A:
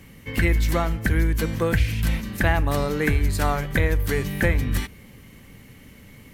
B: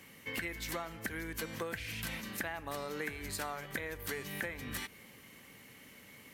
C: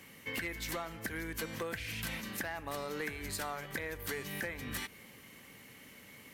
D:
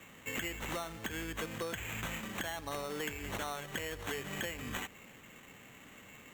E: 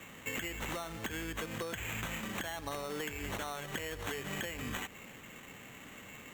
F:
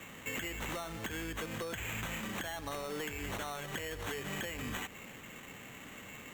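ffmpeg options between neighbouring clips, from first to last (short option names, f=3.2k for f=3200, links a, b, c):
-af "highpass=f=580:p=1,acompressor=threshold=-33dB:ratio=6,volume=-3dB"
-af "asoftclip=type=hard:threshold=-31dB,volume=1dB"
-af "acrusher=samples=9:mix=1:aa=0.000001"
-af "acompressor=threshold=-39dB:ratio=6,volume=4dB"
-af "asoftclip=type=tanh:threshold=-33dB,volume=1.5dB"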